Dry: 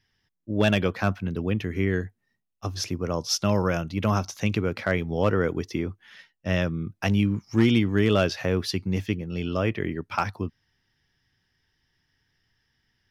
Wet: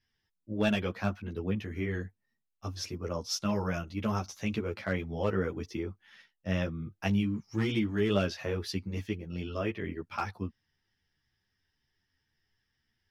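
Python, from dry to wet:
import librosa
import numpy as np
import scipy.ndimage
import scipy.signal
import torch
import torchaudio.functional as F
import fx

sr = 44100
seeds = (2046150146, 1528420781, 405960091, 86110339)

y = fx.ensemble(x, sr)
y = y * librosa.db_to_amplitude(-4.5)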